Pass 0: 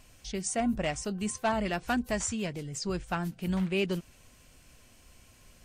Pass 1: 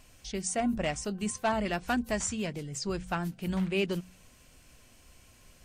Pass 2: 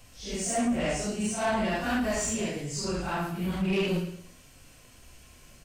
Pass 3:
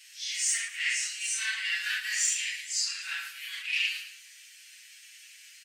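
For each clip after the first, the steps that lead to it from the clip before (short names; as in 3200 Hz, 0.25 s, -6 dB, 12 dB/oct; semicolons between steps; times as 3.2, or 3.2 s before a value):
de-hum 45.7 Hz, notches 5
phase scrambler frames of 0.2 s; on a send: feedback echo 0.11 s, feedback 30%, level -11 dB; on the sum: soft clip -25 dBFS, distortion -15 dB; gain +4 dB
elliptic high-pass 1800 Hz, stop band 70 dB; high shelf 8700 Hz -7.5 dB; comb 7.2 ms; gain +7 dB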